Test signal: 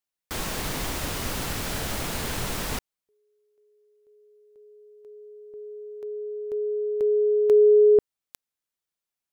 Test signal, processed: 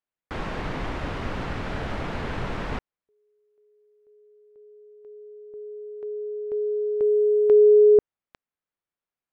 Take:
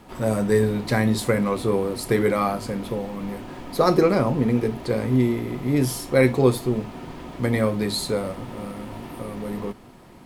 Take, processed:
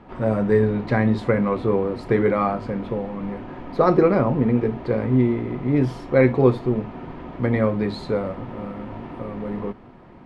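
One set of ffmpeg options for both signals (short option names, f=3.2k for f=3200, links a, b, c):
-af "lowpass=2.1k,volume=1.5dB"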